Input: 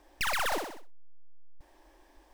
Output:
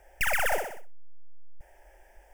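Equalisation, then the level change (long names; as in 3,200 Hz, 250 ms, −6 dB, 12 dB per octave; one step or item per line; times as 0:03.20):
phaser with its sweep stopped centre 1,100 Hz, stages 6
+6.0 dB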